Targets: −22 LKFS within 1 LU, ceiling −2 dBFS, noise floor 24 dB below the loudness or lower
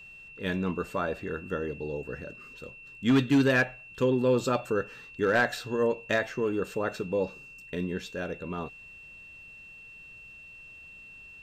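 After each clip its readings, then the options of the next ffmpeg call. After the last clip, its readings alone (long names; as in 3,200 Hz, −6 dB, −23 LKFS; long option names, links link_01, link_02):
interfering tone 2,700 Hz; level of the tone −46 dBFS; integrated loudness −29.0 LKFS; sample peak −16.5 dBFS; target loudness −22.0 LKFS
→ -af "bandreject=frequency=2700:width=30"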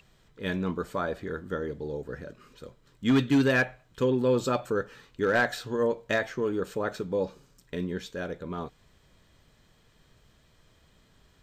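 interfering tone none found; integrated loudness −29.0 LKFS; sample peak −15.5 dBFS; target loudness −22.0 LKFS
→ -af "volume=7dB"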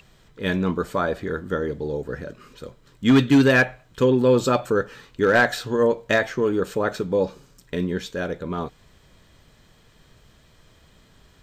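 integrated loudness −22.0 LKFS; sample peak −8.5 dBFS; background noise floor −56 dBFS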